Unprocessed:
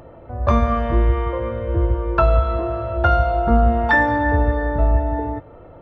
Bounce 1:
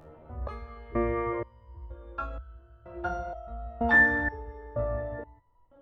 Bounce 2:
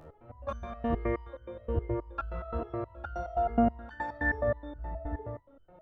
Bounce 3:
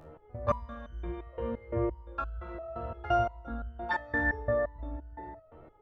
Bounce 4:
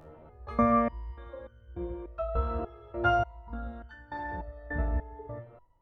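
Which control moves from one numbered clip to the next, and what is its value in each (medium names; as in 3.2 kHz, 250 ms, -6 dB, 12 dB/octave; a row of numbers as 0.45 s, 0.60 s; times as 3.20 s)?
resonator arpeggio, rate: 2.1 Hz, 9.5 Hz, 5.8 Hz, 3.4 Hz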